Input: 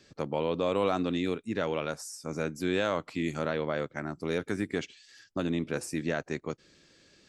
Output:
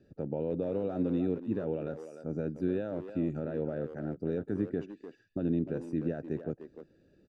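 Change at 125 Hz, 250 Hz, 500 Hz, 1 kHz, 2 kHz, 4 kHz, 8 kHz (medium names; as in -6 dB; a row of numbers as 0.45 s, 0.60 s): +0.5 dB, +0.5 dB, -3.0 dB, -13.5 dB, -15.5 dB, under -20 dB, under -25 dB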